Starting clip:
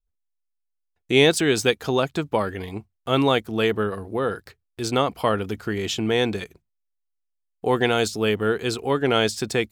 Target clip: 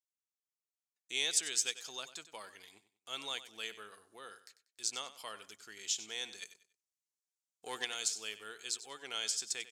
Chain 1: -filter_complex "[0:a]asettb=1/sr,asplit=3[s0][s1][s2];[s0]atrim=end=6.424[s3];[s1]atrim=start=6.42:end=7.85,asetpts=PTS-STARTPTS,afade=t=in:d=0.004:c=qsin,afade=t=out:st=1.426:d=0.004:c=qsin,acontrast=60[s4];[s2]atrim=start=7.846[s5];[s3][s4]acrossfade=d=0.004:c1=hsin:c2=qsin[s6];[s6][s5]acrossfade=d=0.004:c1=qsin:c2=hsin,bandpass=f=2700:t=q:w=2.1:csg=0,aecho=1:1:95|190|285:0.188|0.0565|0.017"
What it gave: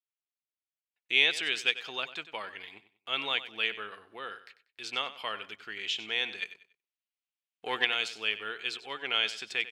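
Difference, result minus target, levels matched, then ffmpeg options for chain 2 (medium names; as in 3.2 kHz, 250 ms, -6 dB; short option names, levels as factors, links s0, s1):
8 kHz band -19.5 dB
-filter_complex "[0:a]asettb=1/sr,asplit=3[s0][s1][s2];[s0]atrim=end=6.424[s3];[s1]atrim=start=6.42:end=7.85,asetpts=PTS-STARTPTS,afade=t=in:d=0.004:c=qsin,afade=t=out:st=1.426:d=0.004:c=qsin,acontrast=60[s4];[s2]atrim=start=7.846[s5];[s3][s4]acrossfade=d=0.004:c1=hsin:c2=qsin[s6];[s6][s5]acrossfade=d=0.004:c1=qsin:c2=hsin,bandpass=f=6900:t=q:w=2.1:csg=0,aecho=1:1:95|190|285:0.188|0.0565|0.017"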